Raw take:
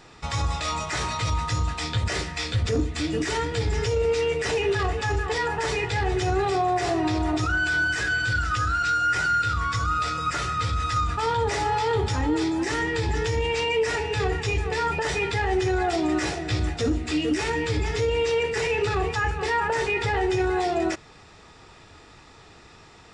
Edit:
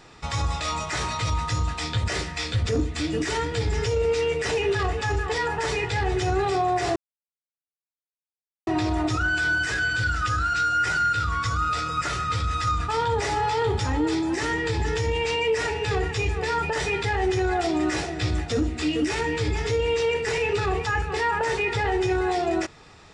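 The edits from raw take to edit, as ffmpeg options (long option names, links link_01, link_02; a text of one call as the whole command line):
ffmpeg -i in.wav -filter_complex "[0:a]asplit=2[link_01][link_02];[link_01]atrim=end=6.96,asetpts=PTS-STARTPTS,afade=type=out:start_time=6.956:duration=0.004:curve=hsin,apad=pad_dur=1.71[link_03];[link_02]atrim=start=6.96,asetpts=PTS-STARTPTS,afade=type=in:duration=0.004:curve=hsin[link_04];[link_03][link_04]concat=n=2:v=0:a=1" out.wav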